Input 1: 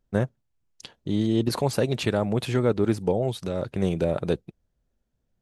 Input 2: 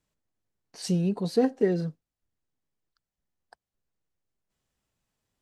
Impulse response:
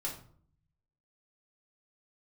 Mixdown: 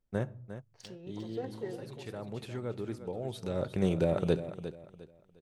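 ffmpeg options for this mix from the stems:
-filter_complex "[0:a]volume=2dB,afade=t=out:st=0.87:d=0.52:silence=0.446684,afade=t=in:st=3.14:d=0.48:silence=0.266073,asplit=3[a][b][c];[b]volume=-14dB[d];[c]volume=-10.5dB[e];[1:a]highpass=420,adynamicsmooth=sensitivity=6.5:basefreq=1.9k,volume=-13.5dB,asplit=4[f][g][h][i];[g]volume=-12dB[j];[h]volume=-9.5dB[k];[i]apad=whole_len=238793[l];[a][l]sidechaincompress=threshold=-51dB:ratio=8:attack=16:release=534[m];[2:a]atrim=start_sample=2205[n];[d][j]amix=inputs=2:normalize=0[o];[o][n]afir=irnorm=-1:irlink=0[p];[e][k]amix=inputs=2:normalize=0,aecho=0:1:354|708|1062|1416:1|0.29|0.0841|0.0244[q];[m][f][p][q]amix=inputs=4:normalize=0"

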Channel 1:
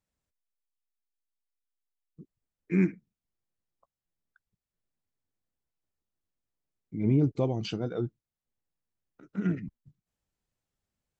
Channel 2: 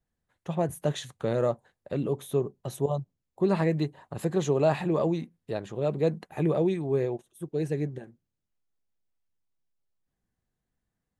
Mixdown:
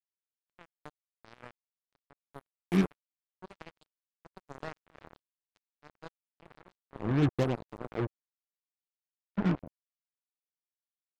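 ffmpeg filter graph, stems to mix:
-filter_complex "[0:a]highshelf=f=2k:g=-8.5,agate=range=-33dB:threshold=-48dB:ratio=3:detection=peak,lowpass=f=4.4k:w=0.5412,lowpass=f=4.4k:w=1.3066,volume=0.5dB[a];[1:a]volume=-15.5dB,asplit=3[b][c][d];[c]volume=-10dB[e];[d]apad=whole_len=493906[f];[a][f]sidechaincompress=threshold=-52dB:ratio=3:attack=28:release=142[g];[e]aecho=0:1:88|176|264|352|440|528|616|704|792|880:1|0.6|0.36|0.216|0.13|0.0778|0.0467|0.028|0.0168|0.0101[h];[g][b][h]amix=inputs=3:normalize=0,acrusher=bits=4:mix=0:aa=0.5"

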